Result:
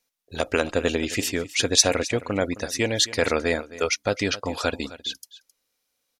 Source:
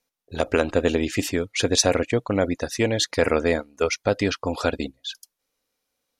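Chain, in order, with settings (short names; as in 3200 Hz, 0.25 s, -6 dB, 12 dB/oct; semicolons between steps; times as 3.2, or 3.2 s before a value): tilt shelf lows -3.5 dB, about 1500 Hz; on a send: echo 0.264 s -17 dB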